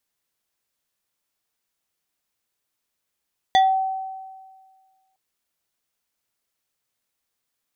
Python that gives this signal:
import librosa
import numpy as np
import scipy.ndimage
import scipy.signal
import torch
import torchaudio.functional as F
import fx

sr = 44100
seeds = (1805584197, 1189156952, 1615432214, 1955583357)

y = fx.fm2(sr, length_s=1.61, level_db=-11.0, carrier_hz=764.0, ratio=3.53, index=0.85, index_s=0.27, decay_s=1.67, shape='exponential')